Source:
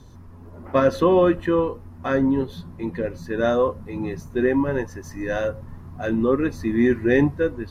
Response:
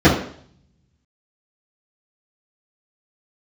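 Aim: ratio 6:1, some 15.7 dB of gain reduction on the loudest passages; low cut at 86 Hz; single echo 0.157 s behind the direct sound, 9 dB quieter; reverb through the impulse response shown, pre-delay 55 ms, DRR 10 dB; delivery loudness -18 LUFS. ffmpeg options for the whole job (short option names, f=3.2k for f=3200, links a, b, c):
-filter_complex "[0:a]highpass=86,acompressor=threshold=-31dB:ratio=6,aecho=1:1:157:0.355,asplit=2[a][b];[1:a]atrim=start_sample=2205,adelay=55[c];[b][c]afir=irnorm=-1:irlink=0,volume=-36dB[d];[a][d]amix=inputs=2:normalize=0,volume=14.5dB"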